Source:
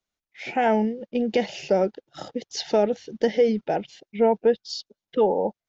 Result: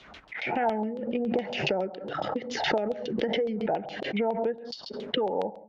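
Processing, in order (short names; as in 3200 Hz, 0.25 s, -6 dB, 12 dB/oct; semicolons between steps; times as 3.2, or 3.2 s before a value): dynamic EQ 2500 Hz, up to -5 dB, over -39 dBFS, Q 0.77; HPF 48 Hz; on a send at -18 dB: bell 810 Hz +4.5 dB 0.59 oct + reverb, pre-delay 3 ms; on the sum: compressor 5:1, threshold -27 dBFS, peak gain reduction 11.5 dB; LFO low-pass saw down 7.2 Hz 750–3700 Hz; backwards sustainer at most 49 dB/s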